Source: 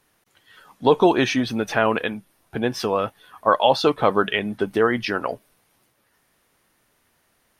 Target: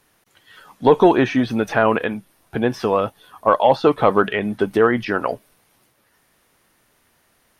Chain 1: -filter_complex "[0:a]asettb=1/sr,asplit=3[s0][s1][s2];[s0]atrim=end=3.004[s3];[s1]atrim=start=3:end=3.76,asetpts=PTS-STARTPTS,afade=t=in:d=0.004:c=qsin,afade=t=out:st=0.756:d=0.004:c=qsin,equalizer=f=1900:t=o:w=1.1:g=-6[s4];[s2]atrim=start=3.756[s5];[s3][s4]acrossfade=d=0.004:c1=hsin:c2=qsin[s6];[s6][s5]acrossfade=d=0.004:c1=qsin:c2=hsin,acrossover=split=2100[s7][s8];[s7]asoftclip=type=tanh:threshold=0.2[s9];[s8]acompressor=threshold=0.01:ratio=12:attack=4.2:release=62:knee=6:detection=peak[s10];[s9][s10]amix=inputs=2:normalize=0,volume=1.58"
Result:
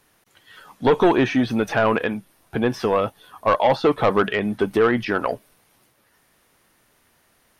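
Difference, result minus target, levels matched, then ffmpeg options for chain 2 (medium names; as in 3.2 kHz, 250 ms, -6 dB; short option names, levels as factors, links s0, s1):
saturation: distortion +15 dB
-filter_complex "[0:a]asettb=1/sr,asplit=3[s0][s1][s2];[s0]atrim=end=3.004[s3];[s1]atrim=start=3:end=3.76,asetpts=PTS-STARTPTS,afade=t=in:d=0.004:c=qsin,afade=t=out:st=0.756:d=0.004:c=qsin,equalizer=f=1900:t=o:w=1.1:g=-6[s4];[s2]atrim=start=3.756[s5];[s3][s4]acrossfade=d=0.004:c1=hsin:c2=qsin[s6];[s6][s5]acrossfade=d=0.004:c1=qsin:c2=hsin,acrossover=split=2100[s7][s8];[s7]asoftclip=type=tanh:threshold=0.708[s9];[s8]acompressor=threshold=0.01:ratio=12:attack=4.2:release=62:knee=6:detection=peak[s10];[s9][s10]amix=inputs=2:normalize=0,volume=1.58"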